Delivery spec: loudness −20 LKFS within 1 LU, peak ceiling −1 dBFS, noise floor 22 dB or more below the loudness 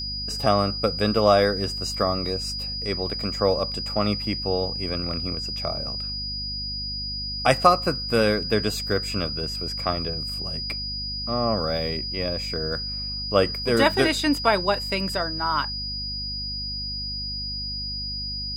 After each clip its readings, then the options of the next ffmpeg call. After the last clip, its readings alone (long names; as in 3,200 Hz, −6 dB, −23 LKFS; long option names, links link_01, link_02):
mains hum 50 Hz; hum harmonics up to 250 Hz; level of the hum −34 dBFS; interfering tone 4,900 Hz; level of the tone −29 dBFS; integrated loudness −24.5 LKFS; sample peak −2.0 dBFS; target loudness −20.0 LKFS
→ -af "bandreject=frequency=50:width_type=h:width=4,bandreject=frequency=100:width_type=h:width=4,bandreject=frequency=150:width_type=h:width=4,bandreject=frequency=200:width_type=h:width=4,bandreject=frequency=250:width_type=h:width=4"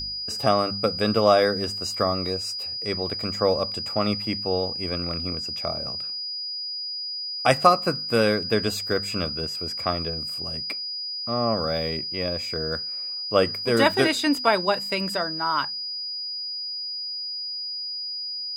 mains hum none found; interfering tone 4,900 Hz; level of the tone −29 dBFS
→ -af "bandreject=frequency=4900:width=30"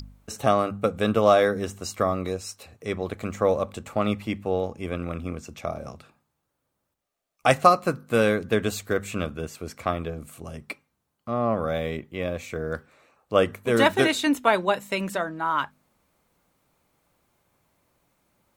interfering tone none found; integrated loudness −25.0 LKFS; sample peak −2.0 dBFS; target loudness −20.0 LKFS
→ -af "volume=5dB,alimiter=limit=-1dB:level=0:latency=1"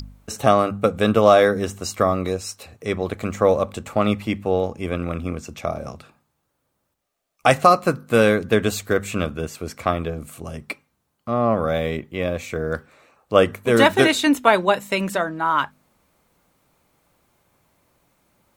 integrated loudness −20.5 LKFS; sample peak −1.0 dBFS; background noise floor −73 dBFS